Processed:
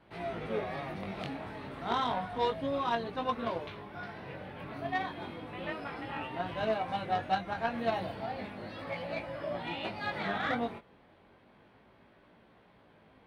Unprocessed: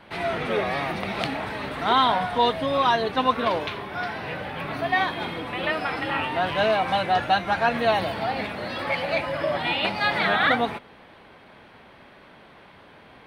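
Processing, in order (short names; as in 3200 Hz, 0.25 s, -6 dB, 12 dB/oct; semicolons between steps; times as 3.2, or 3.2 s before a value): chorus 0.32 Hz, delay 17 ms, depth 5 ms; tilt shelf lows +4 dB, about 760 Hz; added harmonics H 3 -17 dB, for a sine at -10.5 dBFS; gain -4.5 dB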